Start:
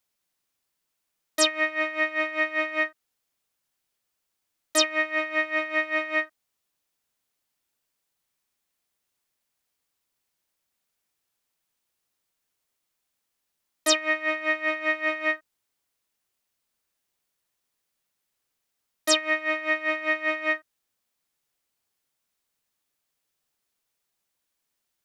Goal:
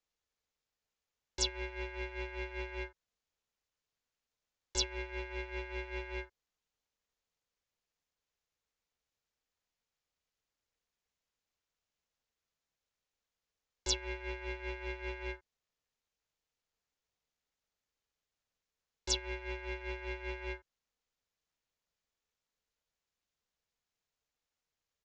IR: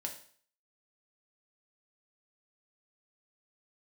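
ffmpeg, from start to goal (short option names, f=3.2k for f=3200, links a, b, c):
-filter_complex "[0:a]lowshelf=f=140:t=q:w=3:g=-11.5,aeval=exprs='val(0)*sin(2*PI*250*n/s)':c=same,bass=f=250:g=4,treble=f=4k:g=-1,acrossover=split=580|3200[a][b][c];[a]asoftclip=type=tanh:threshold=-29.5dB[d];[b]alimiter=level_in=13dB:limit=-24dB:level=0:latency=1:release=169,volume=-13dB[e];[d][e][c]amix=inputs=3:normalize=0,aresample=16000,aresample=44100,volume=-4.5dB"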